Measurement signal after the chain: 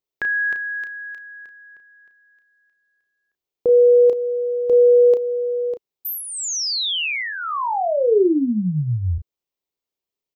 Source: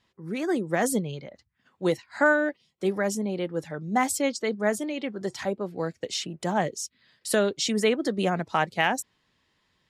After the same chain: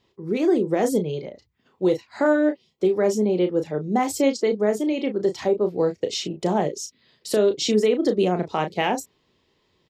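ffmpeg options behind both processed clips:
-filter_complex "[0:a]equalizer=f=400:t=o:w=0.67:g=9,equalizer=f=1.6k:t=o:w=0.67:g=-8,equalizer=f=10k:t=o:w=0.67:g=-11,alimiter=limit=-15dB:level=0:latency=1:release=184,asplit=2[a][b];[b]adelay=33,volume=-8dB[c];[a][c]amix=inputs=2:normalize=0,volume=3.5dB"

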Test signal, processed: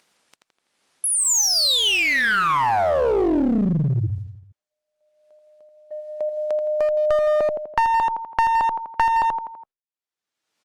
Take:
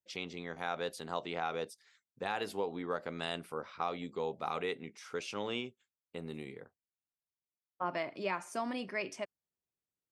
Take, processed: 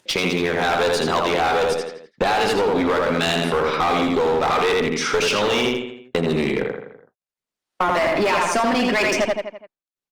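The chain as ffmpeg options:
-filter_complex "[0:a]agate=range=-50dB:threshold=-58dB:ratio=16:detection=peak,asplit=2[a][b];[b]adelay=83,lowpass=f=4.7k:p=1,volume=-4.5dB,asplit=2[c][d];[d]adelay=83,lowpass=f=4.7k:p=1,volume=0.37,asplit=2[e][f];[f]adelay=83,lowpass=f=4.7k:p=1,volume=0.37,asplit=2[g][h];[h]adelay=83,lowpass=f=4.7k:p=1,volume=0.37,asplit=2[i][j];[j]adelay=83,lowpass=f=4.7k:p=1,volume=0.37[k];[a][c][e][g][i][k]amix=inputs=6:normalize=0,apsyclip=35.5dB,highpass=170,lowpass=6.7k,acompressor=mode=upward:threshold=-27dB:ratio=2.5,aeval=exprs='clip(val(0),-1,0.398)':c=same,acompressor=threshold=-28dB:ratio=2,volume=1dB" -ar 48000 -c:a libopus -b:a 32k

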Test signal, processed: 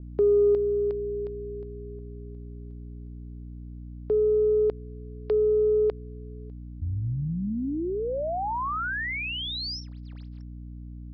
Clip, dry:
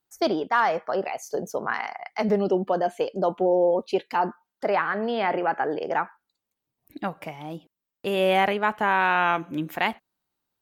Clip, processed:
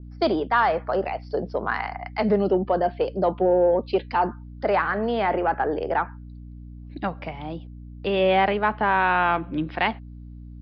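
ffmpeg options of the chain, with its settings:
-filter_complex "[0:a]aeval=exprs='0.335*(cos(1*acos(clip(val(0)/0.335,-1,1)))-cos(1*PI/2))+0.00473*(cos(2*acos(clip(val(0)/0.335,-1,1)))-cos(2*PI/2))+0.00422*(cos(3*acos(clip(val(0)/0.335,-1,1)))-cos(3*PI/2))+0.00944*(cos(5*acos(clip(val(0)/0.335,-1,1)))-cos(5*PI/2))':c=same,acrossover=split=350|1200|3800[a][b][c][d];[d]volume=33.5dB,asoftclip=hard,volume=-33.5dB[e];[a][b][c][e]amix=inputs=4:normalize=0,aresample=11025,aresample=44100,aeval=exprs='val(0)+0.01*(sin(2*PI*60*n/s)+sin(2*PI*2*60*n/s)/2+sin(2*PI*3*60*n/s)/3+sin(2*PI*4*60*n/s)/4+sin(2*PI*5*60*n/s)/5)':c=same,adynamicequalizer=threshold=0.0141:dfrequency=1900:dqfactor=0.7:tfrequency=1900:tqfactor=0.7:attack=5:release=100:ratio=0.375:range=2.5:mode=cutabove:tftype=highshelf,volume=1.5dB"

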